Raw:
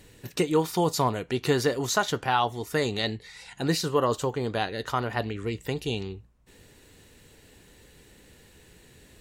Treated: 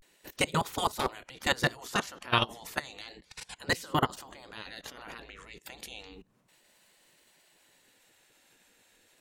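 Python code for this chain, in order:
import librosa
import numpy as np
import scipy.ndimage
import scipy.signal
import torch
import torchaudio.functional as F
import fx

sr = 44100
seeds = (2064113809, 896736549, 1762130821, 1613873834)

y = fx.level_steps(x, sr, step_db=23)
y = fx.spec_gate(y, sr, threshold_db=-10, keep='weak')
y = fx.vibrato(y, sr, rate_hz=0.32, depth_cents=70.0)
y = y * librosa.db_to_amplitude(8.5)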